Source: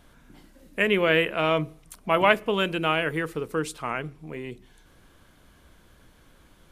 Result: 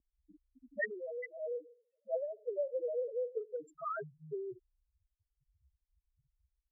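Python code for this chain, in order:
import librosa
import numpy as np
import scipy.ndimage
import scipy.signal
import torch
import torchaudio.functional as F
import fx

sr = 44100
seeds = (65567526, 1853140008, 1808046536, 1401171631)

p1 = fx.rider(x, sr, range_db=3, speed_s=0.5)
p2 = x + F.gain(torch.from_numpy(p1), 3.0).numpy()
p3 = fx.vowel_filter(p2, sr, vowel='e', at=(1.37, 3.38))
p4 = fx.spec_topn(p3, sr, count=1)
p5 = fx.auto_wah(p4, sr, base_hz=290.0, top_hz=2700.0, q=2.2, full_db=-23.0, direction='up')
y = F.gain(torch.from_numpy(p5), 2.5).numpy()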